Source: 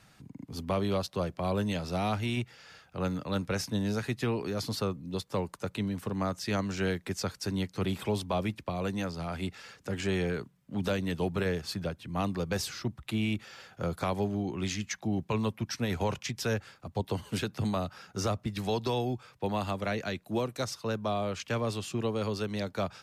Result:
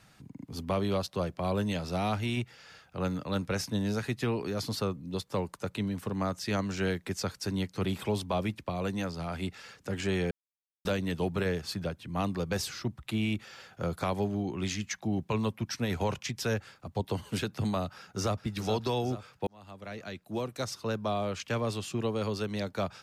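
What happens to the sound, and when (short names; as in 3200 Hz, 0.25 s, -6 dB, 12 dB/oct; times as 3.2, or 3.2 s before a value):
10.31–10.85 mute
17.94–18.41 echo throw 0.43 s, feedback 60%, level -10 dB
19.47–20.79 fade in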